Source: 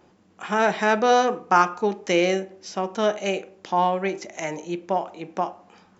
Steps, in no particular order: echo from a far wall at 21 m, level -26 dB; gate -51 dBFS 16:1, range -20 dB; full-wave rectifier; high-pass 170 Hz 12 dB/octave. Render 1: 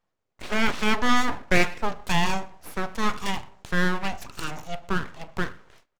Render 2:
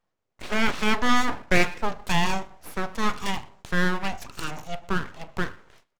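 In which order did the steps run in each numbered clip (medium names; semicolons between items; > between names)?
high-pass > full-wave rectifier > echo from a far wall > gate; high-pass > gate > echo from a far wall > full-wave rectifier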